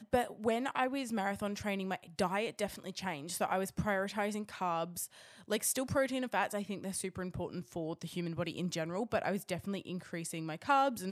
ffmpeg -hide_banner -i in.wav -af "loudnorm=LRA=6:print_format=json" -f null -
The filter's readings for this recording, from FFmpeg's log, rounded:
"input_i" : "-36.0",
"input_tp" : "-17.6",
"input_lra" : "1.8",
"input_thresh" : "-46.0",